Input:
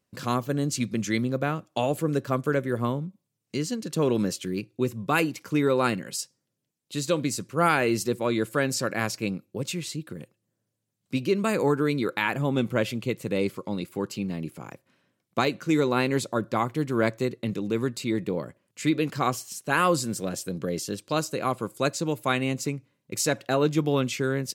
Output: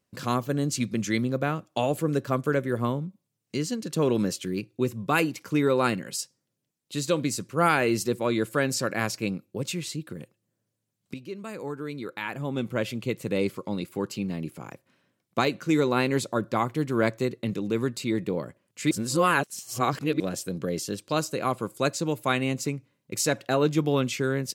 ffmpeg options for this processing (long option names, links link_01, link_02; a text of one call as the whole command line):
ffmpeg -i in.wav -filter_complex "[0:a]asplit=4[link_01][link_02][link_03][link_04];[link_01]atrim=end=11.14,asetpts=PTS-STARTPTS,afade=type=out:start_time=11.136:duration=0.004:curve=hsin:silence=0.211349[link_05];[link_02]atrim=start=11.14:end=18.912,asetpts=PTS-STARTPTS,afade=type=in:duration=2.06:curve=qua:silence=0.211349[link_06];[link_03]atrim=start=18.908:end=20.202,asetpts=PTS-STARTPTS,areverse[link_07];[link_04]atrim=start=20.198[link_08];[link_05][link_06]concat=n=2:v=0:a=1[link_09];[link_09][link_07]acrossfade=duration=0.004:curve1=hsin:curve2=hsin[link_10];[link_10][link_08]acrossfade=duration=0.004:curve1=hsin:curve2=hsin" out.wav